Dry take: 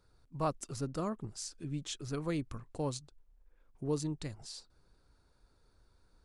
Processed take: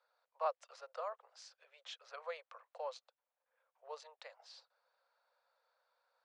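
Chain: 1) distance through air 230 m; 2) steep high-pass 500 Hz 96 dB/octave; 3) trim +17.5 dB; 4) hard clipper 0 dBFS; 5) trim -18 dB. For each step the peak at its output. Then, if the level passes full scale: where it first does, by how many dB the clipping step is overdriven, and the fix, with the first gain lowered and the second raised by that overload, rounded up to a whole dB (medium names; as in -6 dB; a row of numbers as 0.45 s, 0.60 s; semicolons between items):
-22.0 dBFS, -23.5 dBFS, -6.0 dBFS, -6.0 dBFS, -24.0 dBFS; nothing clips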